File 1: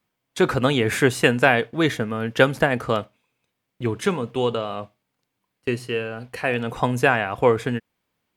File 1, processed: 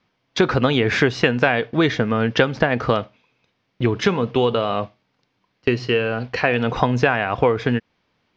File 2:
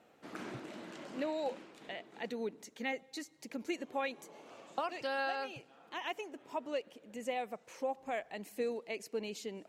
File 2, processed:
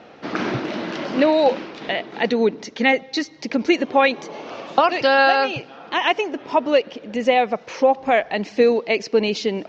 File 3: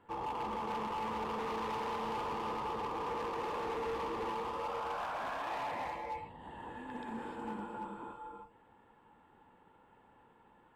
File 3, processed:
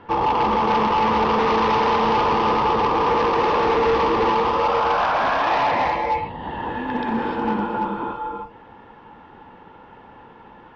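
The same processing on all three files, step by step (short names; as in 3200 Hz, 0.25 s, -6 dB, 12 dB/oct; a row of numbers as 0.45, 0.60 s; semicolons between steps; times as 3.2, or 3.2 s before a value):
steep low-pass 5800 Hz 48 dB/oct; compressor 4:1, threshold -24 dBFS; match loudness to -20 LUFS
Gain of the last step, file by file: +9.0, +20.5, +19.0 dB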